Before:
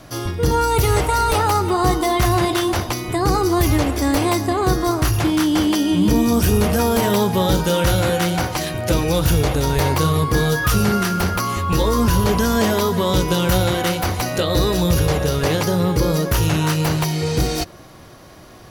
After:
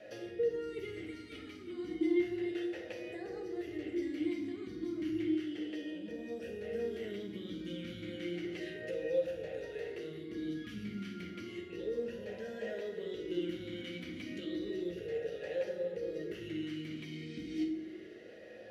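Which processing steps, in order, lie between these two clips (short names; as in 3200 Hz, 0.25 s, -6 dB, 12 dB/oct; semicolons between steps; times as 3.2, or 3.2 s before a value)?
compressor 10:1, threshold -29 dBFS, peak gain reduction 17 dB; reverb RT60 1.0 s, pre-delay 5 ms, DRR 1 dB; vowel sweep e-i 0.32 Hz; gain +1 dB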